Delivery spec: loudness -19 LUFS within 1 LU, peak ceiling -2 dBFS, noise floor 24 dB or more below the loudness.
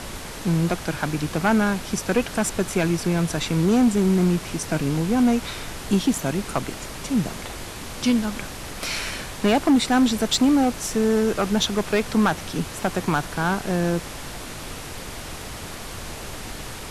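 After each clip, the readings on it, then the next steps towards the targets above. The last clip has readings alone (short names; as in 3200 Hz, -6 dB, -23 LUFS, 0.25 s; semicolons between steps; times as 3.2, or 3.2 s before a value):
clipped 0.7%; flat tops at -12.5 dBFS; noise floor -36 dBFS; noise floor target -47 dBFS; loudness -22.5 LUFS; peak -12.5 dBFS; loudness target -19.0 LUFS
-> clip repair -12.5 dBFS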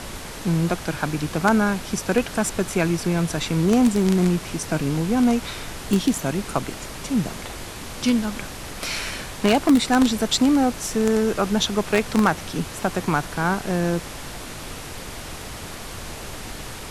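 clipped 0.0%; noise floor -36 dBFS; noise floor target -46 dBFS
-> noise print and reduce 10 dB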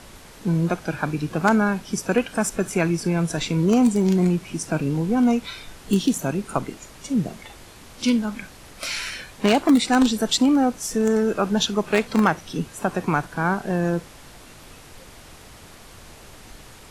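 noise floor -45 dBFS; noise floor target -47 dBFS
-> noise print and reduce 6 dB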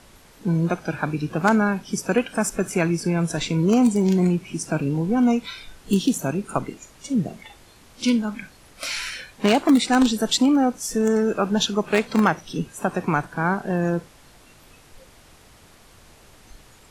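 noise floor -51 dBFS; loudness -22.5 LUFS; peak -3.5 dBFS; loudness target -19.0 LUFS
-> gain +3.5 dB; limiter -2 dBFS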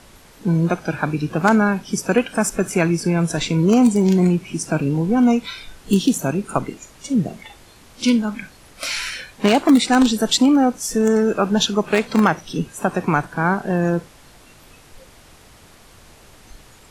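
loudness -19.0 LUFS; peak -2.0 dBFS; noise floor -48 dBFS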